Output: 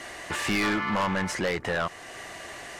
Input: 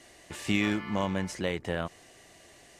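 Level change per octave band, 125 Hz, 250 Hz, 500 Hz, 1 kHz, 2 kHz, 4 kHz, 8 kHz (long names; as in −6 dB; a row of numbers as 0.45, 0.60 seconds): 0.0, +0.5, +3.0, +8.5, +7.0, +4.5, +6.5 decibels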